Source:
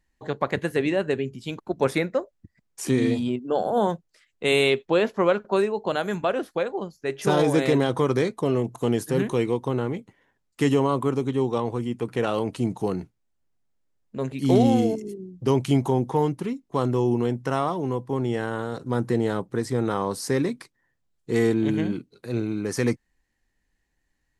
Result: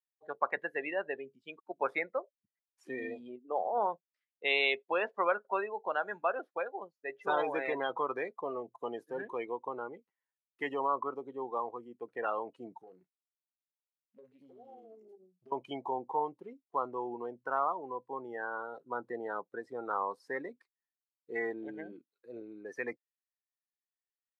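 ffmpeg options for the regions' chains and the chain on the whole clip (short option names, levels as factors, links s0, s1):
-filter_complex "[0:a]asettb=1/sr,asplit=3[s0][s1][s2];[s0]atrim=end=12.794[s3];[s1]atrim=start=12.79:end=15.52,asetpts=PTS-STARTPTS,afade=t=in:d=0.004:c=qsin,afade=t=out:st=2.726:d=0.004:c=qsin,asplit=2[s4][s5];[s5]adelay=32,volume=0.335[s6];[s4][s6]amix=inputs=2:normalize=0,atrim=end_sample=120393,acompressor=threshold=0.0355:ratio=12:attack=3.2:release=140:knee=1:detection=peak,aeval=exprs='(tanh(31.6*val(0)+0.65)-tanh(0.65))/31.6':c=same[s7];[s2]atrim=start=15.516[s8];[s3][s7]acrossfade=d=0.004:c1=hsin:c2=qsin[s9];[s9][s8]acrossfade=d=0.004:c1=qsin:c2=hsin,equalizer=f=9000:t=o:w=2:g=-12.5,afftdn=nr=26:nf=-31,highpass=940"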